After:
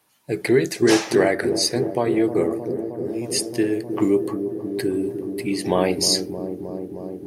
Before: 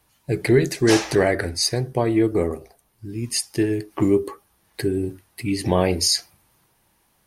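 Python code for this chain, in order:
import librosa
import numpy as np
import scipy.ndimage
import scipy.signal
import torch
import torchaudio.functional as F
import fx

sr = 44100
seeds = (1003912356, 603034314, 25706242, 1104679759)

y = scipy.signal.sosfilt(scipy.signal.butter(2, 190.0, 'highpass', fs=sr, output='sos'), x)
y = fx.echo_wet_lowpass(y, sr, ms=311, feedback_pct=82, hz=530.0, wet_db=-7.5)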